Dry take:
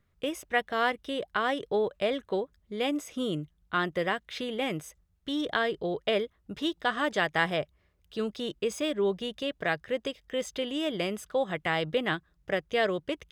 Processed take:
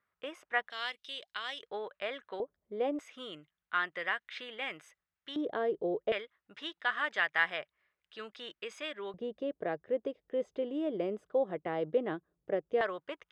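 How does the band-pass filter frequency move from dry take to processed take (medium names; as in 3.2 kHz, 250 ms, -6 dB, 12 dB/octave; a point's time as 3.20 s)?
band-pass filter, Q 1.3
1.3 kHz
from 0.70 s 4 kHz
from 1.63 s 1.6 kHz
from 2.40 s 560 Hz
from 2.99 s 1.8 kHz
from 5.36 s 440 Hz
from 6.12 s 1.8 kHz
from 9.14 s 420 Hz
from 12.81 s 1.2 kHz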